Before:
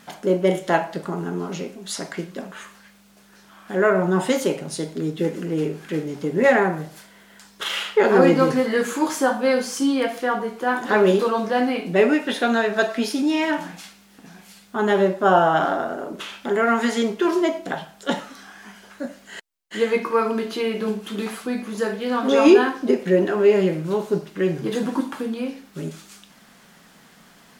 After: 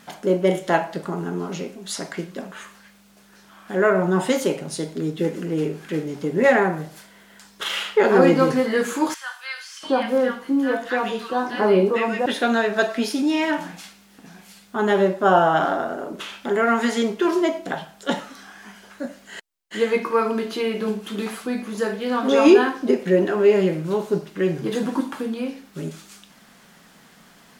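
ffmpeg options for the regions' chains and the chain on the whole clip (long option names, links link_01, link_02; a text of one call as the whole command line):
ffmpeg -i in.wav -filter_complex "[0:a]asettb=1/sr,asplit=3[link_01][link_02][link_03];[link_01]atrim=end=9.144[link_04];[link_02]atrim=start=9.14:end=12.26,asetpts=PTS-STARTPTS,afade=type=in:duration=0.004:curve=qsin,afade=type=out:start_time=3.116:duration=0.004:curve=qsin,bandreject=frequency=2300:width=26,acrossover=split=4200[link_05][link_06];[link_06]acompressor=threshold=-47dB:ratio=4:attack=1:release=60[link_07];[link_05][link_07]amix=inputs=2:normalize=0,acrossover=split=1400[link_08][link_09];[link_08]adelay=690[link_10];[link_10][link_09]amix=inputs=2:normalize=0,atrim=end_sample=137592[link_11];[link_03]atrim=start=12.256[link_12];[link_04][link_11]acrossfade=duration=0.004:curve1=hsin:curve2=qsin[link_13];[link_13][link_12]acrossfade=duration=0.004:curve1=qsin:curve2=hsin" out.wav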